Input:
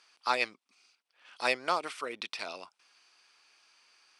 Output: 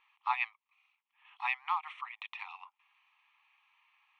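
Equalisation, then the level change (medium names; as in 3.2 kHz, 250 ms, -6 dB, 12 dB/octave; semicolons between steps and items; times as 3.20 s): brick-wall FIR band-pass 720–10000 Hz; distance through air 320 m; static phaser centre 1 kHz, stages 8; +2.5 dB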